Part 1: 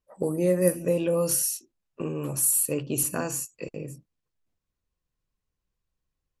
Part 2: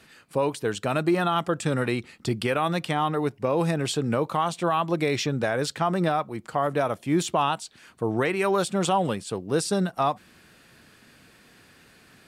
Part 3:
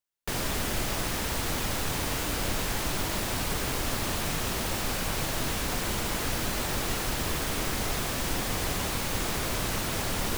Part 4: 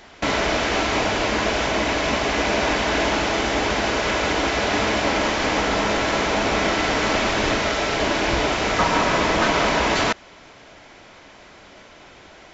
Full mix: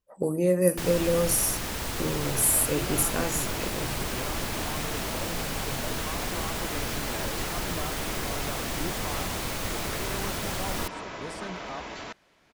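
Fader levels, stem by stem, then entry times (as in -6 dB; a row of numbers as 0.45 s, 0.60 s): 0.0 dB, -16.0 dB, -2.0 dB, -19.0 dB; 0.00 s, 1.70 s, 0.50 s, 2.00 s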